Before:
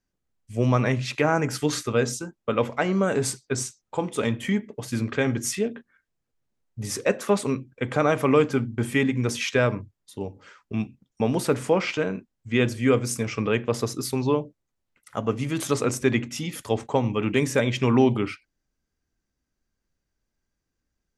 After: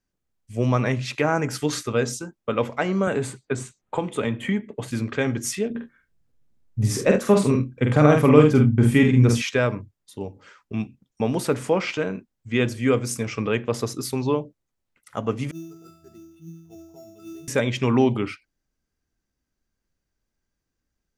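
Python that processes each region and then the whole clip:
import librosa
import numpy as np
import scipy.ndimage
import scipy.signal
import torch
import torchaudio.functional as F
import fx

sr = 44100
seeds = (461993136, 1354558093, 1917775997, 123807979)

y = fx.chain(x, sr, fx.lowpass(hz=8100.0, slope=12),
    fx.peak_eq(hz=5400.0, db=-13.5, octaves=0.6),
    fx.band_squash(depth_pct=70), at=(3.07, 4.91))
y = fx.chain(y, sr, fx.low_shelf(hz=290.0, db=11.0),
    fx.echo_multitap(ms=(47, 73), db=(-4.0, -12.5)), at=(5.7, 9.42))
y = fx.chain(y, sr, fx.octave_resonator(note='E', decay_s=0.76),
    fx.sample_hold(seeds[0], rate_hz=6200.0, jitter_pct=0), at=(15.51, 17.48))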